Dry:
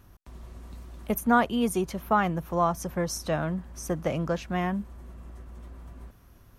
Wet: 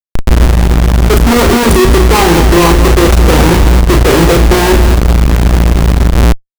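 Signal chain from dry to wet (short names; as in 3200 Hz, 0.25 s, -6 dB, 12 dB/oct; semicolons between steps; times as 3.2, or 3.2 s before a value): LPF 9300 Hz 12 dB/oct; low shelf 86 Hz +9 dB; notches 50/100/150/200/250/300 Hz; in parallel at +2.5 dB: compressor 6:1, threshold -32 dBFS, peak gain reduction 16.5 dB; on the sum: hard clip -22 dBFS, distortion -8 dB; fixed phaser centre 980 Hz, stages 8; small resonant body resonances 230/380 Hz, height 11 dB, ringing for 25 ms; Schmitt trigger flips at -32 dBFS; loudspeakers at several distances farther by 12 m -5 dB, 76 m -9 dB; maximiser +34.5 dB; gain -1 dB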